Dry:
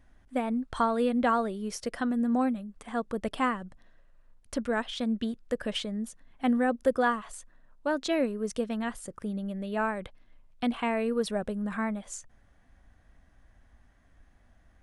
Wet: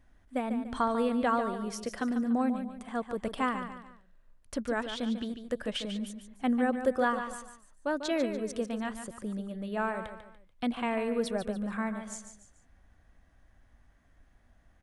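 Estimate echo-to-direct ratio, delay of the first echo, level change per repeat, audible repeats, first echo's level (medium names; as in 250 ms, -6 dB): -8.5 dB, 145 ms, -8.5 dB, 3, -9.0 dB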